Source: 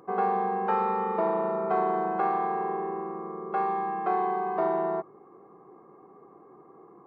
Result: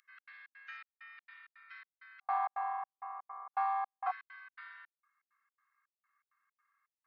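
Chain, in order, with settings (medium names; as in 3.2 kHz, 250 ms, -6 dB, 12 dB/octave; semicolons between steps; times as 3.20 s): steep high-pass 1.7 kHz 48 dB/octave, from 2.20 s 750 Hz, from 4.10 s 1.5 kHz; trance gate "xx.xx.xxx.." 164 bpm -60 dB; trim -2.5 dB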